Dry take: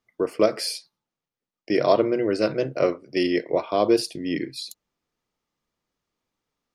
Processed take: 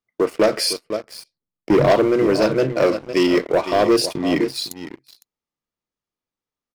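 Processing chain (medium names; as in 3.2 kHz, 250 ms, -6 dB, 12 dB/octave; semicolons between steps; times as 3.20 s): 0.73–1.92 s: RIAA curve playback; delay 507 ms -13.5 dB; waveshaping leveller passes 3; trim -3.5 dB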